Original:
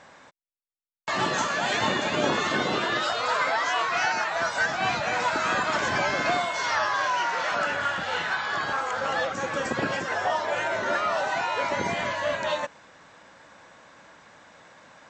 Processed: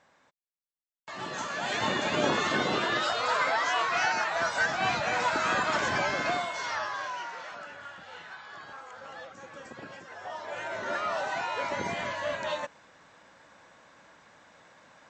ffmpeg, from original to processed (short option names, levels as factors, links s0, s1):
-af "volume=3.16,afade=t=in:st=1.16:d=0.96:silence=0.266073,afade=t=out:st=5.76:d=1.2:silence=0.446684,afade=t=out:st=6.96:d=0.66:silence=0.398107,afade=t=in:st=10.15:d=0.93:silence=0.251189"